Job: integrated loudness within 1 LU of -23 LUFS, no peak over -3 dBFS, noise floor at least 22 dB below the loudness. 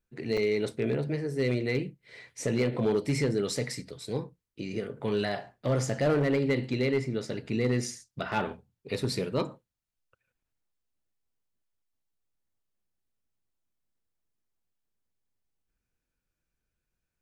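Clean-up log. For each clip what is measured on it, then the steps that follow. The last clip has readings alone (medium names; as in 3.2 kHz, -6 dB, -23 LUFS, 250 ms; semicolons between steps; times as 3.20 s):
clipped samples 0.5%; clipping level -19.5 dBFS; dropouts 1; longest dropout 5.2 ms; loudness -30.0 LUFS; peak level -19.5 dBFS; loudness target -23.0 LUFS
-> clip repair -19.5 dBFS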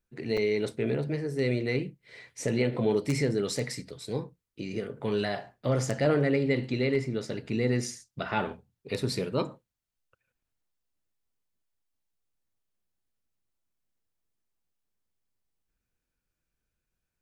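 clipped samples 0.0%; dropouts 1; longest dropout 5.2 ms
-> interpolate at 0.37 s, 5.2 ms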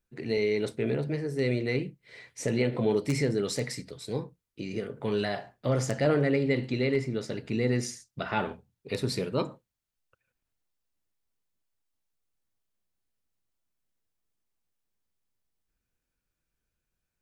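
dropouts 0; loudness -30.0 LUFS; peak level -10.5 dBFS; loudness target -23.0 LUFS
-> trim +7 dB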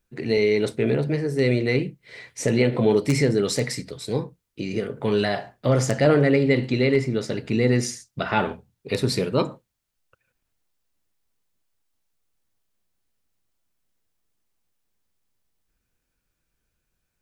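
loudness -23.0 LUFS; peak level -3.5 dBFS; noise floor -79 dBFS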